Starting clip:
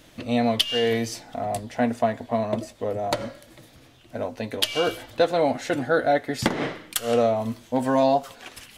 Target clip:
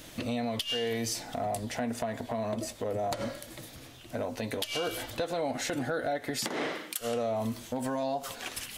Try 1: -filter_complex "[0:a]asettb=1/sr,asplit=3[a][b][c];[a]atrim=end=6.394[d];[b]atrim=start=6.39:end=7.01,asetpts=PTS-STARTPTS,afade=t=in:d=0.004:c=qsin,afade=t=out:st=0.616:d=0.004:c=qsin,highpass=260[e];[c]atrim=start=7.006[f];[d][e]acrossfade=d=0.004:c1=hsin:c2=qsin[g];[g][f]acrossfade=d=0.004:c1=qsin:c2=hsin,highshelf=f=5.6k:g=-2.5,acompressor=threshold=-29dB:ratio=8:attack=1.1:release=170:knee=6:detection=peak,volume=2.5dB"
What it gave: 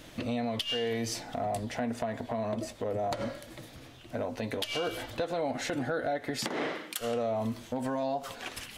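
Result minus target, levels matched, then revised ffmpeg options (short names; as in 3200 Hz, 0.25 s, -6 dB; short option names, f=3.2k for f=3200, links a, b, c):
8000 Hz band -4.0 dB
-filter_complex "[0:a]asettb=1/sr,asplit=3[a][b][c];[a]atrim=end=6.394[d];[b]atrim=start=6.39:end=7.01,asetpts=PTS-STARTPTS,afade=t=in:d=0.004:c=qsin,afade=t=out:st=0.616:d=0.004:c=qsin,highpass=260[e];[c]atrim=start=7.006[f];[d][e]acrossfade=d=0.004:c1=hsin:c2=qsin[g];[g][f]acrossfade=d=0.004:c1=qsin:c2=hsin,highshelf=f=5.6k:g=7.5,acompressor=threshold=-29dB:ratio=8:attack=1.1:release=170:knee=6:detection=peak,volume=2.5dB"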